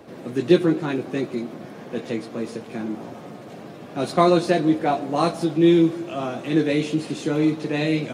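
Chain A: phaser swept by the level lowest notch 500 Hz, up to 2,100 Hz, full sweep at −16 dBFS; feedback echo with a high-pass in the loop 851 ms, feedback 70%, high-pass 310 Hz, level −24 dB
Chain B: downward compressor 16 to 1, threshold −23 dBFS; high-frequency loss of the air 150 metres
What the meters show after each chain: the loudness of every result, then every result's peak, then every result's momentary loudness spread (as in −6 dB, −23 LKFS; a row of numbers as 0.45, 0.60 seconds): −23.0, −30.5 LKFS; −4.5, −13.5 dBFS; 16, 8 LU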